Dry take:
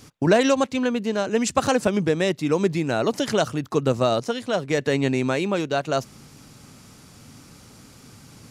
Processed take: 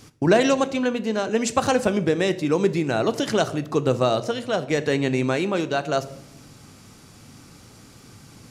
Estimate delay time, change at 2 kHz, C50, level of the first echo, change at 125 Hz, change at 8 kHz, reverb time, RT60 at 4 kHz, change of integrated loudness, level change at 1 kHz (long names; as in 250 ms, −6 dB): no echo audible, +0.5 dB, 16.5 dB, no echo audible, 0.0 dB, −0.5 dB, 0.80 s, 0.55 s, 0.0 dB, +0.5 dB